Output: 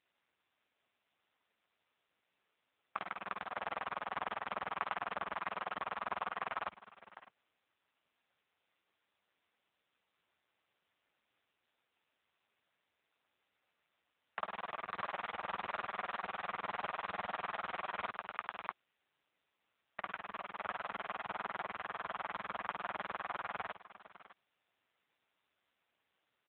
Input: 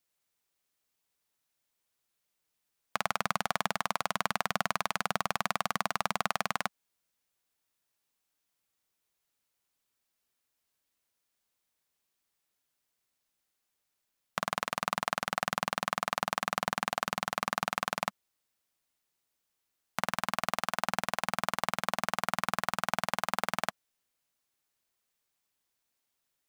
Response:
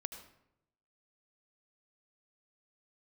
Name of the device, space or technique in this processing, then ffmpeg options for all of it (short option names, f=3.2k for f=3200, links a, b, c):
satellite phone: -af "highpass=380,lowpass=3.2k,aecho=1:1:611:0.158,volume=11.5dB" -ar 8000 -c:a libopencore_amrnb -b:a 6700